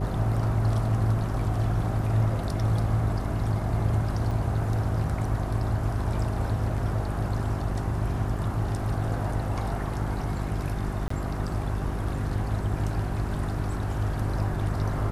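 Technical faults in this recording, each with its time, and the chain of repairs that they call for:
hum 50 Hz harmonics 8 -31 dBFS
4.31 s: dropout 2.6 ms
11.08–11.10 s: dropout 24 ms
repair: de-hum 50 Hz, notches 8; interpolate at 4.31 s, 2.6 ms; interpolate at 11.08 s, 24 ms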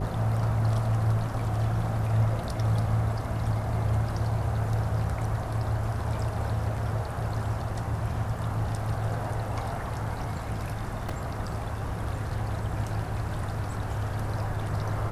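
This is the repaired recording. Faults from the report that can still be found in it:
nothing left

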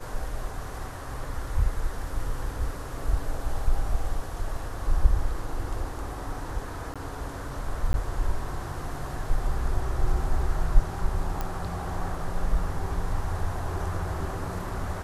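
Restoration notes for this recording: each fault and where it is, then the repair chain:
6.94–6.96 s: dropout 16 ms
7.93–7.94 s: dropout 11 ms
11.41 s: pop -16 dBFS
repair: de-click; interpolate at 6.94 s, 16 ms; interpolate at 7.93 s, 11 ms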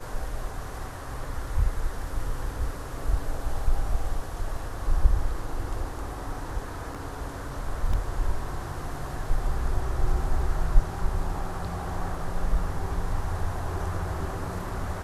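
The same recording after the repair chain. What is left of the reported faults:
nothing left

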